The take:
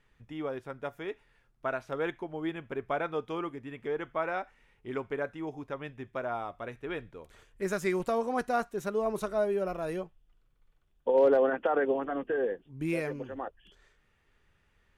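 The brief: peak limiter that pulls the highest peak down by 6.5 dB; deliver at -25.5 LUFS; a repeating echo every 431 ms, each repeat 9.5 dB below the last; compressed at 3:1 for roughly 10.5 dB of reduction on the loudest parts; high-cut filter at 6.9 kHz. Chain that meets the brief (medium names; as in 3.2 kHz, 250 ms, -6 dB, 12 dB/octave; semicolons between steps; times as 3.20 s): low-pass 6.9 kHz; compression 3:1, threshold -34 dBFS; peak limiter -29 dBFS; feedback delay 431 ms, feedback 33%, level -9.5 dB; trim +14 dB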